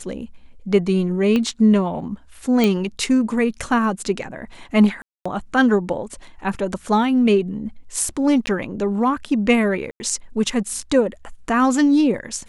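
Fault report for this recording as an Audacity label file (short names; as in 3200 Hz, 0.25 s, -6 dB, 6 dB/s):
1.360000	1.360000	pop -10 dBFS
2.640000	2.640000	pop -6 dBFS
5.020000	5.250000	gap 0.235 s
8.460000	8.470000	gap 10 ms
9.910000	10.000000	gap 90 ms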